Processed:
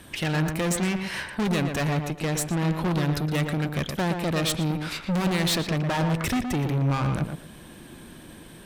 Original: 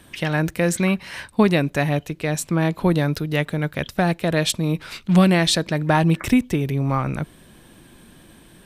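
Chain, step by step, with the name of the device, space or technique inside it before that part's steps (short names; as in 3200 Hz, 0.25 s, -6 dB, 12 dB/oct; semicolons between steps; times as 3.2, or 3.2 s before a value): rockabilly slapback (tube stage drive 26 dB, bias 0.4; tape echo 0.117 s, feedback 23%, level -3.5 dB, low-pass 1800 Hz); gain +3.5 dB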